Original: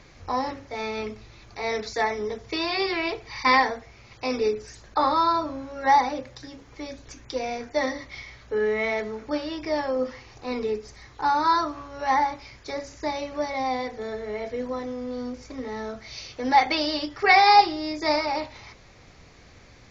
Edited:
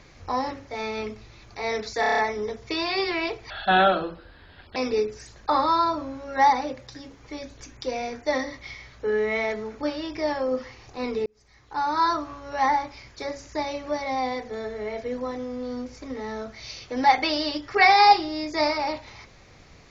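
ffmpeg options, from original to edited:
-filter_complex "[0:a]asplit=10[s0][s1][s2][s3][s4][s5][s6][s7][s8][s9];[s0]atrim=end=2.032[s10];[s1]atrim=start=1.998:end=2.032[s11];[s2]atrim=start=1.998:end=2.032[s12];[s3]atrim=start=1.998:end=2.032[s13];[s4]atrim=start=1.998:end=2.032[s14];[s5]atrim=start=1.998:end=2.032[s15];[s6]atrim=start=1.998:end=3.324[s16];[s7]atrim=start=3.32:end=4.24,asetpts=PTS-STARTPTS,asetrate=32193,aresample=44100,atrim=end_sample=55578,asetpts=PTS-STARTPTS[s17];[s8]atrim=start=4.236:end=10.74,asetpts=PTS-STARTPTS,afade=t=out:st=6.5:d=0.004:c=hsin[s18];[s9]atrim=start=10.74,asetpts=PTS-STARTPTS,afade=t=in:d=0.86[s19];[s10][s11]acrossfade=d=0.004:c1=hsin:c2=hsin[s20];[s20][s12]acrossfade=d=0.004:c1=hsin:c2=hsin[s21];[s21][s13]acrossfade=d=0.004:c1=hsin:c2=hsin[s22];[s22][s14]acrossfade=d=0.004:c1=hsin:c2=hsin[s23];[s23][s15]acrossfade=d=0.004:c1=hsin:c2=hsin[s24];[s24][s16]acrossfade=d=0.004:c1=hsin:c2=hsin[s25];[s25][s17]acrossfade=d=0.004:c1=hsin:c2=hsin[s26];[s18][s19]concat=n=2:v=0:a=1[s27];[s26][s27]acrossfade=d=0.004:c1=hsin:c2=hsin"

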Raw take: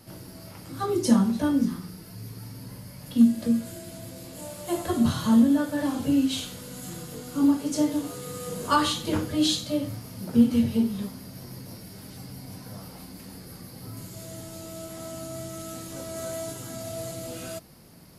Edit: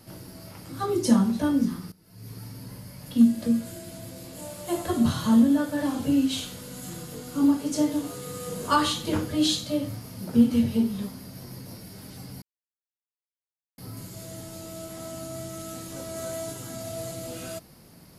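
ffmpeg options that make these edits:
-filter_complex "[0:a]asplit=4[s0][s1][s2][s3];[s0]atrim=end=1.92,asetpts=PTS-STARTPTS,afade=t=out:st=1.916:d=0.004:c=hsin:silence=0.133352[s4];[s1]atrim=start=1.92:end=12.42,asetpts=PTS-STARTPTS,afade=t=in:d=0.4:c=qua:silence=0.133352,afade=t=out:st=10.496:d=0.004:c=hsin[s5];[s2]atrim=start=12.42:end=13.78,asetpts=PTS-STARTPTS,volume=0[s6];[s3]atrim=start=13.78,asetpts=PTS-STARTPTS,afade=t=in:d=0.004:c=hsin[s7];[s4][s5][s6][s7]concat=n=4:v=0:a=1"

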